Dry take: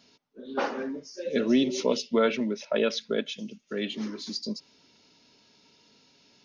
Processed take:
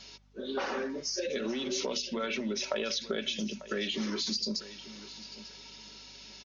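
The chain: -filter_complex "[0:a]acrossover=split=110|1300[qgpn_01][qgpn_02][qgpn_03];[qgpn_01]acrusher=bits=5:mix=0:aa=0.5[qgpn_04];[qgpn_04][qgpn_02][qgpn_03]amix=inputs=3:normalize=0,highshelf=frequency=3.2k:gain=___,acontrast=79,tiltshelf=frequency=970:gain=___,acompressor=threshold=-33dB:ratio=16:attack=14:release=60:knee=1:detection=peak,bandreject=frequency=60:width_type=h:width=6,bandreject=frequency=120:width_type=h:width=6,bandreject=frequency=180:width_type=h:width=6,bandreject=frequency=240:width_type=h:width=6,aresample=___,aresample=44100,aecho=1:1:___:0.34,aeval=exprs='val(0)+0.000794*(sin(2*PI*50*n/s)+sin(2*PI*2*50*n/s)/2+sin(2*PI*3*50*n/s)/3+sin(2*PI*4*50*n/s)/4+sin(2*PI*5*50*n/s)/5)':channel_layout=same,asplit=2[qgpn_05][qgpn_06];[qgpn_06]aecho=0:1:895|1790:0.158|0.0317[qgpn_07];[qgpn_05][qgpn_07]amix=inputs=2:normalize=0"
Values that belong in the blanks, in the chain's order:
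2.5, -3.5, 16000, 5.3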